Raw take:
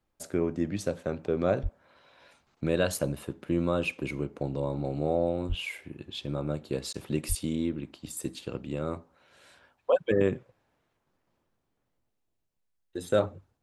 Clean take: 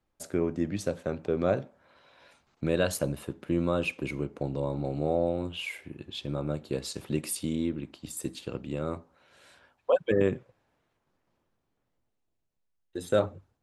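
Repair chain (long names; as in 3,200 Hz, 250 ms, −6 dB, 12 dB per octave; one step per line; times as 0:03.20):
0:01.62–0:01.74: high-pass filter 140 Hz 24 dB per octave
0:05.48–0:05.60: high-pass filter 140 Hz 24 dB per octave
0:07.28–0:07.40: high-pass filter 140 Hz 24 dB per octave
repair the gap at 0:06.93, 10 ms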